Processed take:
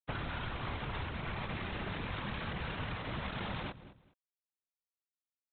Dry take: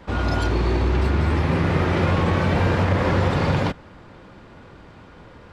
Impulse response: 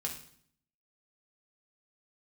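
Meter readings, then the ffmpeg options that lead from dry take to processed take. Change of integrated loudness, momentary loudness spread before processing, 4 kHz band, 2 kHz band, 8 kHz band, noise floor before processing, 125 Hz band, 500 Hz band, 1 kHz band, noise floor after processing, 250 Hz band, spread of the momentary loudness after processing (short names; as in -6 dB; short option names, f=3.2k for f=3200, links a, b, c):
-18.5 dB, 3 LU, -10.5 dB, -13.5 dB, n/a, -46 dBFS, -21.0 dB, -21.5 dB, -16.0 dB, under -85 dBFS, -20.0 dB, 2 LU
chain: -filter_complex "[0:a]acrossover=split=220|3000[a][b][c];[b]acompressor=threshold=-29dB:ratio=6[d];[a][d][c]amix=inputs=3:normalize=0,aresample=8000,acrusher=bits=3:mix=0:aa=0.5,aresample=44100,afftfilt=real='hypot(re,im)*cos(2*PI*random(0))':imag='hypot(re,im)*sin(2*PI*random(1))':win_size=512:overlap=0.75,aecho=1:1:208|416:0.0944|0.0189,acrossover=split=720[e][f];[e]acompressor=threshold=-35dB:ratio=12[g];[f]alimiter=level_in=6dB:limit=-24dB:level=0:latency=1:release=425,volume=-6dB[h];[g][h]amix=inputs=2:normalize=0,volume=-2.5dB"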